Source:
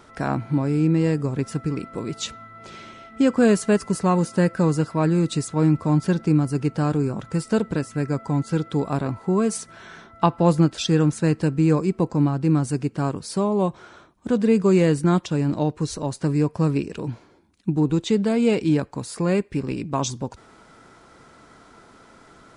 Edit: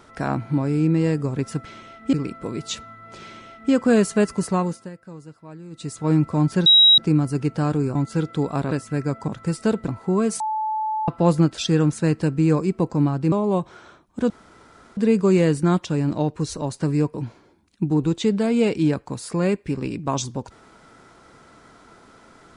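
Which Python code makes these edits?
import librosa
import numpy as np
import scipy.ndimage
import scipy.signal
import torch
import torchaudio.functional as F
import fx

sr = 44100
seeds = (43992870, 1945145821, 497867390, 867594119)

y = fx.edit(x, sr, fx.duplicate(start_s=2.76, length_s=0.48, to_s=1.65),
    fx.fade_down_up(start_s=4.0, length_s=1.64, db=-20.0, fade_s=0.42),
    fx.insert_tone(at_s=6.18, length_s=0.32, hz=3840.0, db=-9.0),
    fx.swap(start_s=7.15, length_s=0.6, other_s=8.32, other_length_s=0.76),
    fx.bleep(start_s=9.6, length_s=0.68, hz=868.0, db=-21.5),
    fx.cut(start_s=12.52, length_s=0.88),
    fx.insert_room_tone(at_s=14.38, length_s=0.67),
    fx.cut(start_s=16.55, length_s=0.45), tone=tone)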